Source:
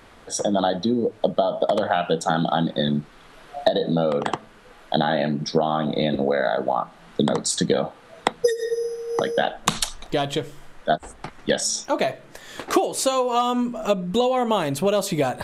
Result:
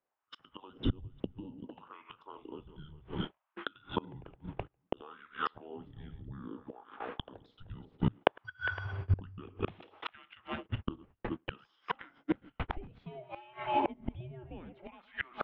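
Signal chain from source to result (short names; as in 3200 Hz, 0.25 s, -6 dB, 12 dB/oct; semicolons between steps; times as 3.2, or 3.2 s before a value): regenerating reverse delay 0.203 s, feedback 47%, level -10.5 dB; 3.32–3.55 spectral delete 410–900 Hz; gate -32 dBFS, range -43 dB; LFO high-pass sine 0.61 Hz 290–1800 Hz; 4.32–4.97 compressor 6:1, threshold -29 dBFS, peak gain reduction 15.5 dB; flipped gate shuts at -17 dBFS, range -29 dB; mistuned SSB -370 Hz 240–3300 Hz; gain +1 dB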